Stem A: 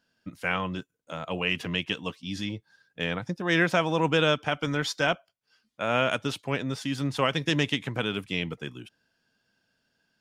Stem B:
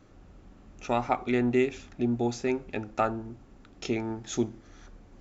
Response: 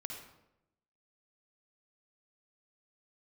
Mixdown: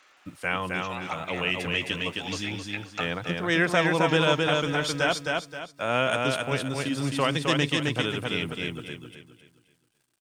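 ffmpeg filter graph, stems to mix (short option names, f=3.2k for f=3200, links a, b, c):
-filter_complex "[0:a]equalizer=f=200:t=o:w=0.25:g=-6.5,acrusher=bits=10:mix=0:aa=0.000001,volume=0dB,asplit=3[a][b][c];[b]volume=-3dB[d];[1:a]highpass=860,equalizer=f=2.6k:t=o:w=2.5:g=13,acompressor=threshold=-33dB:ratio=2,volume=-0.5dB,asplit=2[e][f];[f]volume=-12.5dB[g];[c]apad=whole_len=229476[h];[e][h]sidechaincompress=threshold=-30dB:ratio=8:attack=7.7:release=825[i];[d][g]amix=inputs=2:normalize=0,aecho=0:1:264|528|792|1056|1320:1|0.34|0.116|0.0393|0.0134[j];[a][i][j]amix=inputs=3:normalize=0,equalizer=f=8.7k:w=4.2:g=9"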